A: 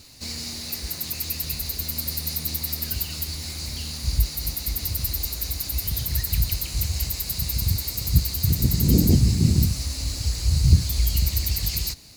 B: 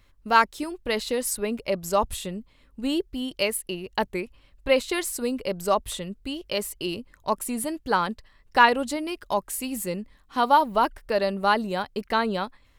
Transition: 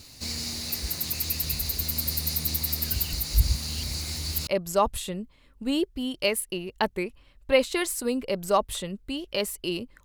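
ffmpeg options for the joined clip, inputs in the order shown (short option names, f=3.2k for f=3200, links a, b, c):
-filter_complex "[0:a]apad=whole_dur=10.04,atrim=end=10.04,asplit=2[a][b];[a]atrim=end=3.132[c];[b]atrim=start=3.128:end=4.472,asetpts=PTS-STARTPTS,areverse[d];[1:a]atrim=start=1.638:end=7.21[e];[c][d]acrossfade=d=0.004:c1=hsin:c2=hsin[f];[f][e]acrossfade=d=0.004:c1=hsin:c2=hsin"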